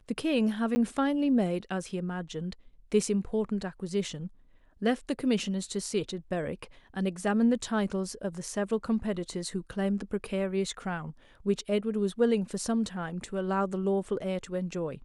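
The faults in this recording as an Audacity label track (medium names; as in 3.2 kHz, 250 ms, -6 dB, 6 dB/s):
0.750000	0.760000	dropout 10 ms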